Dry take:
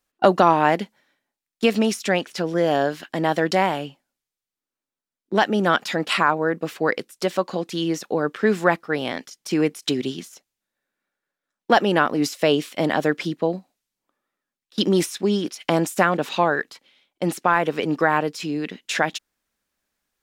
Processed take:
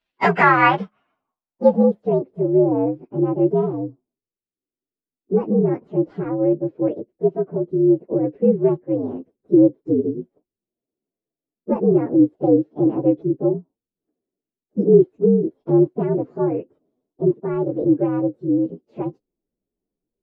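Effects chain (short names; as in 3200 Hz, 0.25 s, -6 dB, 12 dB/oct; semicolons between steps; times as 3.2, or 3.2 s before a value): inharmonic rescaling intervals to 122%; low-pass sweep 3400 Hz -> 390 Hz, 0.13–2.32; gain +3 dB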